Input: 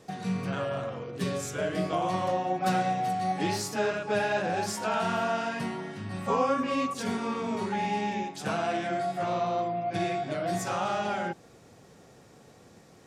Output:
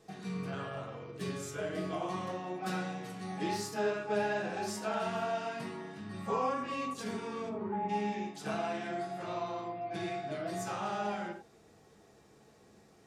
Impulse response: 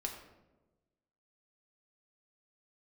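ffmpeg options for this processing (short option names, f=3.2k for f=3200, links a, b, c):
-filter_complex "[0:a]asplit=3[a][b][c];[a]afade=t=out:st=7.48:d=0.02[d];[b]lowpass=1.2k,afade=t=in:st=7.48:d=0.02,afade=t=out:st=7.88:d=0.02[e];[c]afade=t=in:st=7.88:d=0.02[f];[d][e][f]amix=inputs=3:normalize=0[g];[1:a]atrim=start_sample=2205,atrim=end_sample=4410[h];[g][h]afir=irnorm=-1:irlink=0,volume=-6dB"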